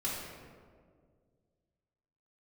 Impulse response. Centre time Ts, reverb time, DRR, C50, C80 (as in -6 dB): 96 ms, 1.9 s, -7.5 dB, -0.5 dB, 2.0 dB